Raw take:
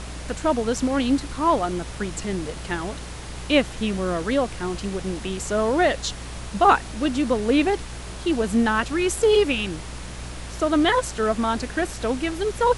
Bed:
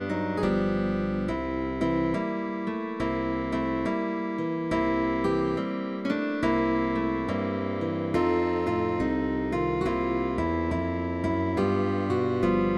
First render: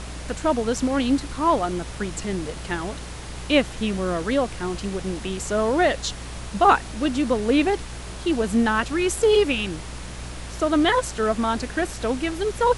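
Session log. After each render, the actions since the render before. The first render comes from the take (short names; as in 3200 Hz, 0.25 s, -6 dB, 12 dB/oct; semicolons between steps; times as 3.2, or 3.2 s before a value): nothing audible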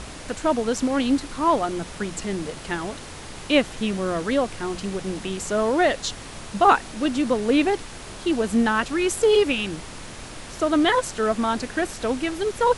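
de-hum 60 Hz, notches 3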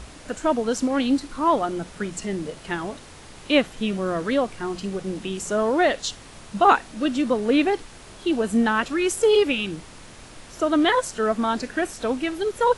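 noise print and reduce 6 dB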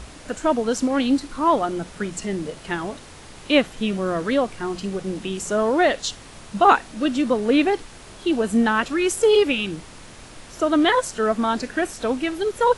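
gain +1.5 dB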